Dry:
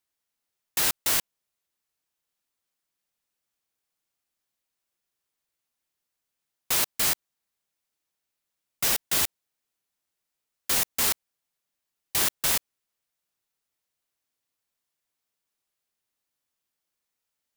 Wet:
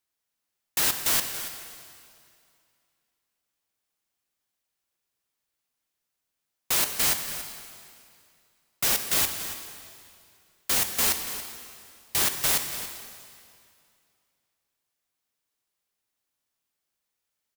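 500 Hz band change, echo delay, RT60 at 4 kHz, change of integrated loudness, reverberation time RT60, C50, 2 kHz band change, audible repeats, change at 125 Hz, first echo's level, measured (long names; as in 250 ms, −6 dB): +1.0 dB, 281 ms, 2.2 s, −0.5 dB, 2.4 s, 6.5 dB, +1.0 dB, 1, +1.5 dB, −13.0 dB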